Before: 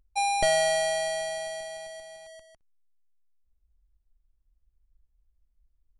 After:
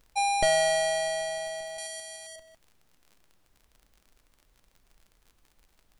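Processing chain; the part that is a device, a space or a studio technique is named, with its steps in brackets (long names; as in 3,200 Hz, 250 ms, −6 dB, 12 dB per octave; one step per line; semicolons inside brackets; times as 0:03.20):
0:01.78–0:02.36: spectral tilt +4 dB per octave
vinyl LP (surface crackle 55 per second −45 dBFS; pink noise bed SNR 39 dB)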